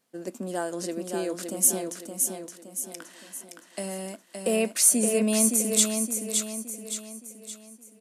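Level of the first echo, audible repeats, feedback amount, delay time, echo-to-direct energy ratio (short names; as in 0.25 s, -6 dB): -5.0 dB, 5, 45%, 0.568 s, -4.0 dB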